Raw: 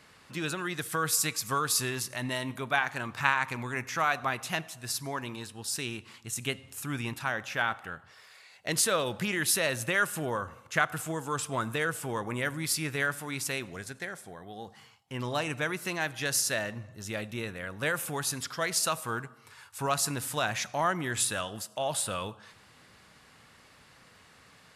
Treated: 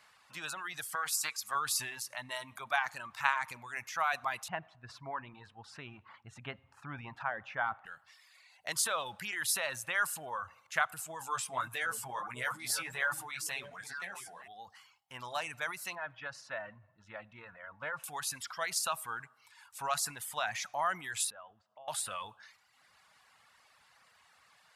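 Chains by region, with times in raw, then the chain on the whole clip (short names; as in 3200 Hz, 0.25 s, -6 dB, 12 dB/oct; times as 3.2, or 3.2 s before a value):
0.95–1.55 HPF 500 Hz 6 dB/oct + Doppler distortion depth 0.15 ms
4.48–7.86 LPF 1800 Hz + low shelf 450 Hz +9 dB
11.19–14.48 doubler 16 ms -5 dB + delay with a stepping band-pass 0.302 s, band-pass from 170 Hz, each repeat 1.4 oct, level -3 dB + mismatched tape noise reduction encoder only
15.95–18.04 LPF 1800 Hz + notch comb 400 Hz + Doppler distortion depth 0.1 ms
21.3–21.88 compressor 2:1, threshold -50 dBFS + tape spacing loss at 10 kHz 38 dB
whole clip: transient shaper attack +1 dB, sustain +6 dB; reverb removal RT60 0.96 s; resonant low shelf 540 Hz -11.5 dB, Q 1.5; gain -5.5 dB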